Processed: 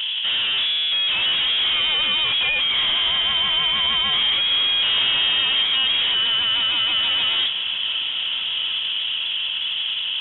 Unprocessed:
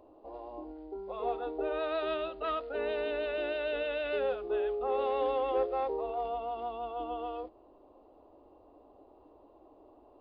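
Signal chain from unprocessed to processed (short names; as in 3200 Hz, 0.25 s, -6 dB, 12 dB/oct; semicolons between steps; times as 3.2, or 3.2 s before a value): overdrive pedal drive 42 dB, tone 1800 Hz, clips at -19.5 dBFS; diffused feedback echo 1.364 s, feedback 58%, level -12 dB; inverted band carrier 3700 Hz; gain +5.5 dB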